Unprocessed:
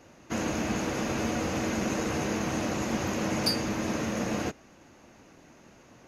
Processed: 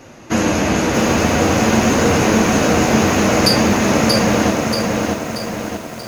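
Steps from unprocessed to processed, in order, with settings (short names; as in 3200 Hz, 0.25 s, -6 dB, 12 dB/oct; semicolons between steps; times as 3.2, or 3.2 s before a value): flange 0.51 Hz, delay 7.4 ms, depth 5.8 ms, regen -37%; band-limited delay 0.181 s, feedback 77%, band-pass 740 Hz, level -11 dB; maximiser +19 dB; lo-fi delay 0.632 s, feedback 55%, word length 6-bit, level -3 dB; gain -1.5 dB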